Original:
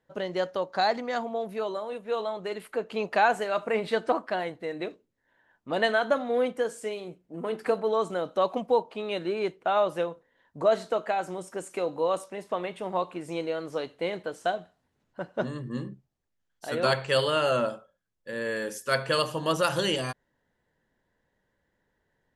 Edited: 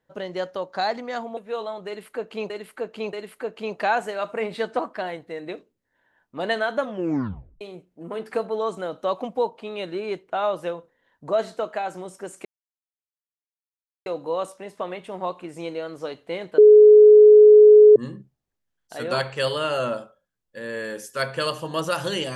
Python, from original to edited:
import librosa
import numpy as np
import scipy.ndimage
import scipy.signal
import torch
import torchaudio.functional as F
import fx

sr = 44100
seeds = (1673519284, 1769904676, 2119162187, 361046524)

y = fx.edit(x, sr, fx.cut(start_s=1.37, length_s=0.59),
    fx.repeat(start_s=2.46, length_s=0.63, count=3),
    fx.tape_stop(start_s=6.15, length_s=0.79),
    fx.insert_silence(at_s=11.78, length_s=1.61),
    fx.bleep(start_s=14.3, length_s=1.38, hz=423.0, db=-6.5), tone=tone)